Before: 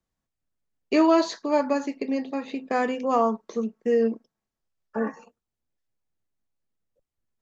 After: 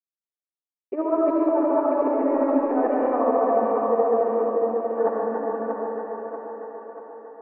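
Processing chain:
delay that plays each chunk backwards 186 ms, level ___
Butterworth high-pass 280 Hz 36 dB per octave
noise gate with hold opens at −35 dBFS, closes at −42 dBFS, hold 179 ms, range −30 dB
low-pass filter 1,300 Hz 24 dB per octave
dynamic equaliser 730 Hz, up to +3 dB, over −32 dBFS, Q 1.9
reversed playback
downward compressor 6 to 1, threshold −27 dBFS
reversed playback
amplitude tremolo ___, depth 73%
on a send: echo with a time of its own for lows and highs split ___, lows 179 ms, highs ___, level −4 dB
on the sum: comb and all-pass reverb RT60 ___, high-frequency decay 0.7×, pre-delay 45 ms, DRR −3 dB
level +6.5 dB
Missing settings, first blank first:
−1.5 dB, 14 Hz, 320 Hz, 636 ms, 2.7 s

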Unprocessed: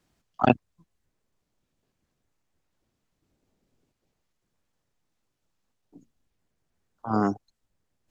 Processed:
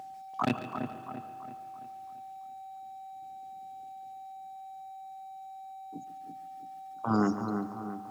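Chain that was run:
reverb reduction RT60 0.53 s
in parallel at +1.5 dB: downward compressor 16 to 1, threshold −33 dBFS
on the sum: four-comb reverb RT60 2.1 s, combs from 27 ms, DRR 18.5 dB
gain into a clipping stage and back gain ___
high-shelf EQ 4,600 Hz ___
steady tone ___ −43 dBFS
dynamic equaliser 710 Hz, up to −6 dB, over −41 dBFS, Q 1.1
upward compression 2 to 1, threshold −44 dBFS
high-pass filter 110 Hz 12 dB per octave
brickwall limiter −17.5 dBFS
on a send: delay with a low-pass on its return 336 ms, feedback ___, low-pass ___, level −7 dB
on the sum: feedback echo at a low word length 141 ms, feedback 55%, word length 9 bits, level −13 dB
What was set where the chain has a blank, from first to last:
10 dB, +4.5 dB, 770 Hz, 45%, 1,700 Hz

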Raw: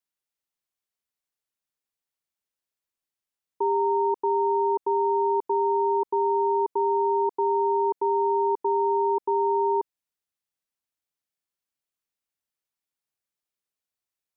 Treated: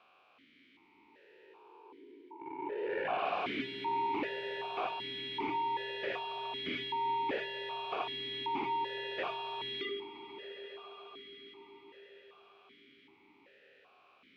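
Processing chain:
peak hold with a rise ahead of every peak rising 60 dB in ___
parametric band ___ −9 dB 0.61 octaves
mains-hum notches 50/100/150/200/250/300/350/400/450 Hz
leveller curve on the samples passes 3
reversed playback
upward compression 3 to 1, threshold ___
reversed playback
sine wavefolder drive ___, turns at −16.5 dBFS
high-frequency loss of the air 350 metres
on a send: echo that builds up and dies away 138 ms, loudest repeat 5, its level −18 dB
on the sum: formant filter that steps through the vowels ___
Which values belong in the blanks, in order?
2.06 s, 680 Hz, −41 dBFS, 17 dB, 2.6 Hz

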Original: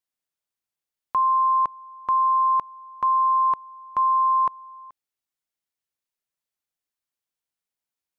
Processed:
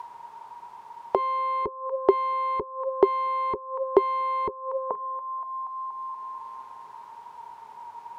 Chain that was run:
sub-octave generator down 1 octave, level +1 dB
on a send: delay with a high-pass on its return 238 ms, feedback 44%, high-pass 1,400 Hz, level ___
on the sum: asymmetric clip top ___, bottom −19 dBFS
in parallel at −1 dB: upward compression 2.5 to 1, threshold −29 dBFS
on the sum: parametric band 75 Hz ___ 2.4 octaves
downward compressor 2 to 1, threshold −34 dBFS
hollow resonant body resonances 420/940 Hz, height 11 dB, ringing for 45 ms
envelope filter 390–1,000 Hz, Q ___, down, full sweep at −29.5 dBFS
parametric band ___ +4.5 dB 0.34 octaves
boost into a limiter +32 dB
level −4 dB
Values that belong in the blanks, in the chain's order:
−14.5 dB, −37 dBFS, +8 dB, 12, 220 Hz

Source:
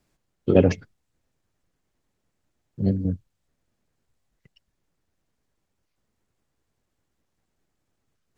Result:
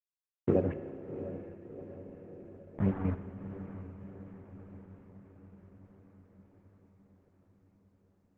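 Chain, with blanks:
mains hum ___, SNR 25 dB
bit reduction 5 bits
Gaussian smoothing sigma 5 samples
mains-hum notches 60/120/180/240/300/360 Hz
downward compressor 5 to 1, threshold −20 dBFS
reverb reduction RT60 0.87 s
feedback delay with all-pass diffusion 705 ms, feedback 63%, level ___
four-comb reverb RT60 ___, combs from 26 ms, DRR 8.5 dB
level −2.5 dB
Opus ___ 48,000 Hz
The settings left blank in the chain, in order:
60 Hz, −11 dB, 2.7 s, 16 kbit/s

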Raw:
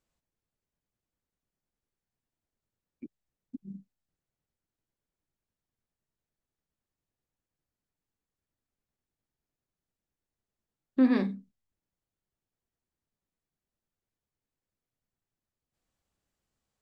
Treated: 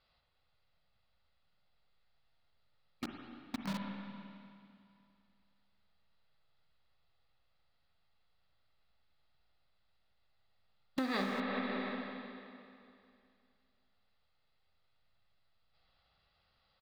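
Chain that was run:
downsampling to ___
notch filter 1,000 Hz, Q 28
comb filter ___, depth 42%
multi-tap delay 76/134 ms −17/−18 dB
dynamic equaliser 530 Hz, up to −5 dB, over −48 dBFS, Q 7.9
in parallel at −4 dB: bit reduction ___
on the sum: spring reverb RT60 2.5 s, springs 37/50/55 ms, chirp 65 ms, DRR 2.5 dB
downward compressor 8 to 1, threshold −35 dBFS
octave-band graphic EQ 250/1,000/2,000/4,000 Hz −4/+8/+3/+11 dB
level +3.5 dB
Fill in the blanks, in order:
11,025 Hz, 1.5 ms, 7 bits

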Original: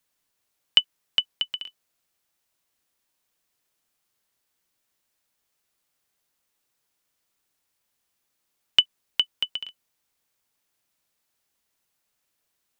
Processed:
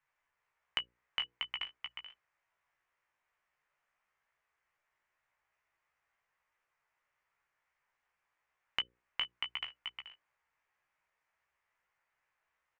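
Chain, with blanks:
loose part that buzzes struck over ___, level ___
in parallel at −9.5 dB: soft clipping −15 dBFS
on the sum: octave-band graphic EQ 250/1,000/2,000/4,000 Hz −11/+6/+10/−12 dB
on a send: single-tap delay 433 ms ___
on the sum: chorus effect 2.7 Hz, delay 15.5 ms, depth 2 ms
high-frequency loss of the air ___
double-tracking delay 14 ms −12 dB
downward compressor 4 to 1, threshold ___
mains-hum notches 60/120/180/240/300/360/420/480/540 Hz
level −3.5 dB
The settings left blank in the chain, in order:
−50 dBFS, −20 dBFS, −7 dB, 140 metres, −29 dBFS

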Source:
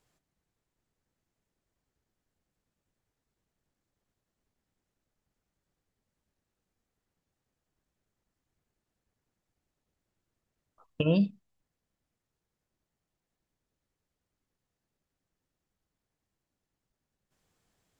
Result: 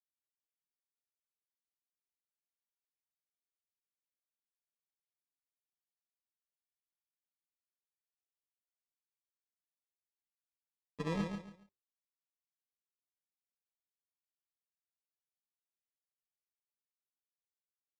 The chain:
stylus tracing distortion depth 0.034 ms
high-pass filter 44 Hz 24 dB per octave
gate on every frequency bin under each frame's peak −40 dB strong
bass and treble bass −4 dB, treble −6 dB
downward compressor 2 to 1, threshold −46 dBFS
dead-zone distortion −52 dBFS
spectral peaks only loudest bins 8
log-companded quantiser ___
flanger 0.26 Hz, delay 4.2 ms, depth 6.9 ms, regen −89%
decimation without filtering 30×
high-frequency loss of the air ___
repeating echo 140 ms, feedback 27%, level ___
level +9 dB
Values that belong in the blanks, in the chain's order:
4 bits, 100 metres, −6 dB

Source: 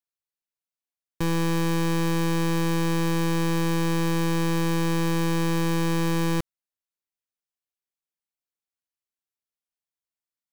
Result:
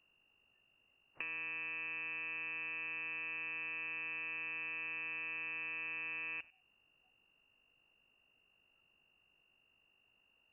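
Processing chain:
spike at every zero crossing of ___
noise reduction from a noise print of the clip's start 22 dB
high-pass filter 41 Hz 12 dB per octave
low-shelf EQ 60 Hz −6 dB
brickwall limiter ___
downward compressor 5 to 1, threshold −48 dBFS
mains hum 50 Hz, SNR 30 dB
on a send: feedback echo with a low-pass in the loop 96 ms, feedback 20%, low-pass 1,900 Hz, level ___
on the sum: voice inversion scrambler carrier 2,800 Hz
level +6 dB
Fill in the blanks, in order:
−37 dBFS, −27.5 dBFS, −22.5 dB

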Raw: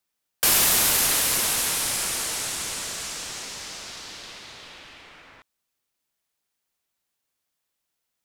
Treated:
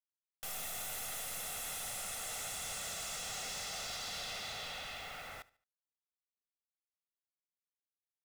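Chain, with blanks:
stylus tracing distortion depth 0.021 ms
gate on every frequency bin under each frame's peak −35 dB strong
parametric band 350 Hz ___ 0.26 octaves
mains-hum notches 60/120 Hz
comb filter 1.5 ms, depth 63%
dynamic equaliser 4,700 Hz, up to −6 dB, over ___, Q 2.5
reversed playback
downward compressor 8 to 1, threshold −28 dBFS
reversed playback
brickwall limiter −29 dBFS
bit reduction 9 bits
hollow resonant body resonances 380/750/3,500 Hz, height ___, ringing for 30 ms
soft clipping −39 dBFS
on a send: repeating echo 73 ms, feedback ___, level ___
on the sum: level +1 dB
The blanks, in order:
−13 dB, −38 dBFS, 6 dB, 37%, −21 dB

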